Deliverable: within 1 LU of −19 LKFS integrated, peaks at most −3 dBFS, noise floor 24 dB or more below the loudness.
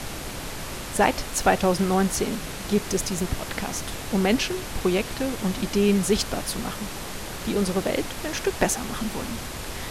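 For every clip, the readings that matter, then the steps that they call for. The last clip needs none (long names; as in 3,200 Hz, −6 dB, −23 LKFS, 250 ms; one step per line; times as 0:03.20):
background noise floor −35 dBFS; target noise floor −50 dBFS; integrated loudness −25.5 LKFS; sample peak −5.0 dBFS; target loudness −19.0 LKFS
→ noise reduction from a noise print 15 dB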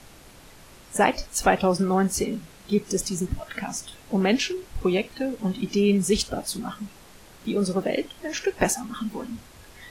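background noise floor −49 dBFS; target noise floor −50 dBFS
→ noise reduction from a noise print 6 dB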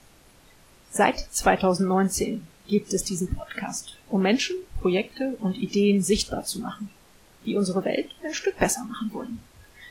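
background noise floor −55 dBFS; integrated loudness −25.5 LKFS; sample peak −5.0 dBFS; target loudness −19.0 LKFS
→ level +6.5 dB
brickwall limiter −3 dBFS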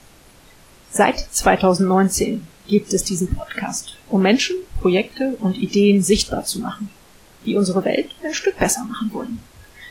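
integrated loudness −19.5 LKFS; sample peak −3.0 dBFS; background noise floor −48 dBFS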